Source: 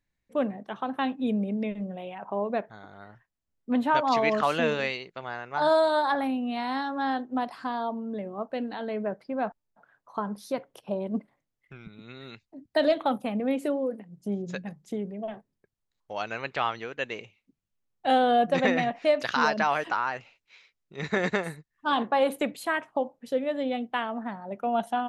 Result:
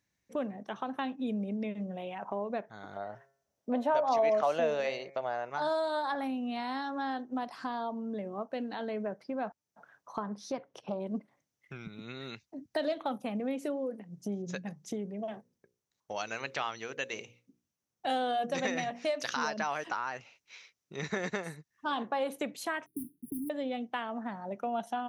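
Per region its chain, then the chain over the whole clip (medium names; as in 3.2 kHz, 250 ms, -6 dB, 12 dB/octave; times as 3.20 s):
2.96–5.50 s: peaking EQ 630 Hz +15 dB 0.88 oct + de-hum 136.5 Hz, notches 18
10.23–11.00 s: distance through air 89 m + loudspeaker Doppler distortion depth 0.16 ms
15.24–19.34 s: treble shelf 4.5 kHz +9 dB + hum notches 60/120/180/240/300/360/420/480/540 Hz + tape noise reduction on one side only decoder only
22.86–23.50 s: block-companded coder 3-bit + brick-wall FIR band-stop 410–9200 Hz + comb 6.5 ms, depth 33%
whole clip: high-pass 90 Hz; peaking EQ 5.9 kHz +10.5 dB 0.33 oct; compression 2:1, threshold -41 dBFS; trim +2.5 dB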